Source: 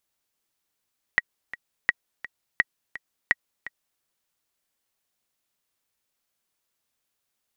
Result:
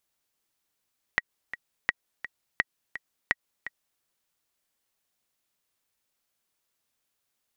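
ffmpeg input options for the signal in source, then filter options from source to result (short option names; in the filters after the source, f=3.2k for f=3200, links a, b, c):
-f lavfi -i "aevalsrc='pow(10,(-5.5-16.5*gte(mod(t,2*60/169),60/169))/20)*sin(2*PI*1910*mod(t,60/169))*exp(-6.91*mod(t,60/169)/0.03)':d=2.84:s=44100"
-af "acompressor=threshold=-22dB:ratio=6"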